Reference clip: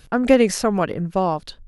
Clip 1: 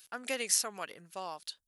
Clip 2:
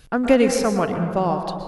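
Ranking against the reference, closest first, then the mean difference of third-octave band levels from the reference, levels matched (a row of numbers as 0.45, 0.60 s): 2, 1; 5.5, 8.5 dB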